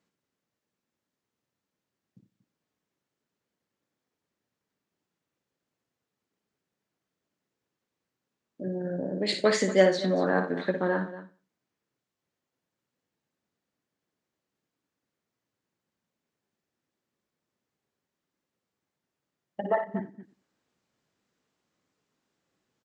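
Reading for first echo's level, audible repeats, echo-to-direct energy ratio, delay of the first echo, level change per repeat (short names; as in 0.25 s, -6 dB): -7.5 dB, 6, -6.5 dB, 58 ms, no steady repeat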